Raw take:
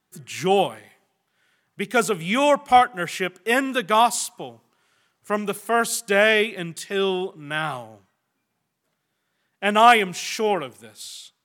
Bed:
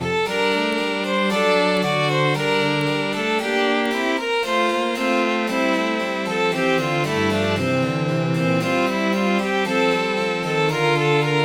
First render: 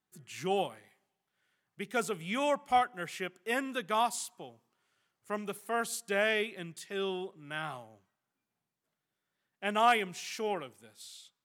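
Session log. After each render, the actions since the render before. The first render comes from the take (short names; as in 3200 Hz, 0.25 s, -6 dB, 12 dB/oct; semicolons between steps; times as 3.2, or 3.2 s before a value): gain -12 dB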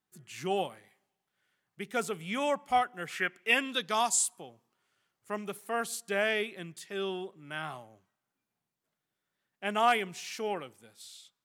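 3.09–4.4 bell 1300 Hz -> 11000 Hz +14.5 dB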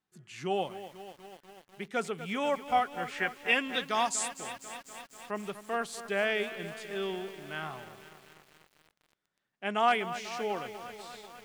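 air absorption 55 m; lo-fi delay 0.245 s, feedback 80%, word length 8-bit, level -12.5 dB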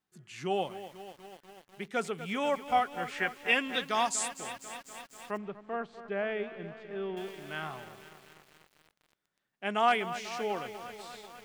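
5.37–7.17 tape spacing loss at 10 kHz 39 dB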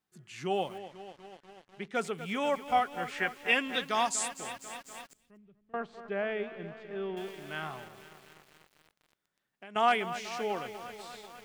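0.78–1.95 air absorption 66 m; 5.13–5.74 passive tone stack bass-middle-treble 10-0-1; 7.87–9.76 compressor, threshold -45 dBFS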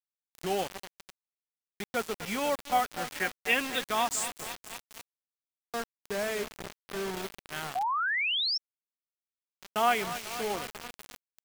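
bit-crush 6-bit; 7.75–8.58 painted sound rise 700–5600 Hz -29 dBFS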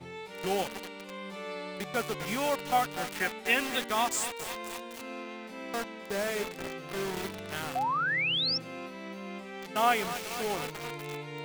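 add bed -21.5 dB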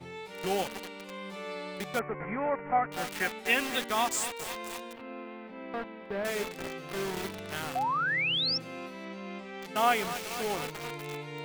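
1.99–2.92 elliptic low-pass 2100 Hz, stop band 50 dB; 4.93–6.25 air absorption 420 m; 9.05–9.62 LPF 6200 Hz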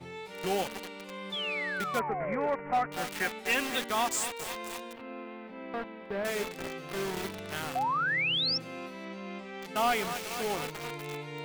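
1.32–2.47 painted sound fall 410–3600 Hz -35 dBFS; hard clip -22 dBFS, distortion -16 dB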